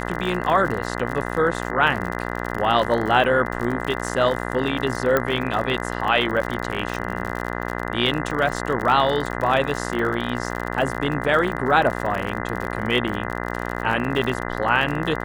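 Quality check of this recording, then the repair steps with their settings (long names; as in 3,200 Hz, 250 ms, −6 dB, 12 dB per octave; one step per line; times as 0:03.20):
mains buzz 60 Hz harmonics 34 −28 dBFS
surface crackle 51 per second −26 dBFS
0:05.17: click −6 dBFS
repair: click removal
hum removal 60 Hz, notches 34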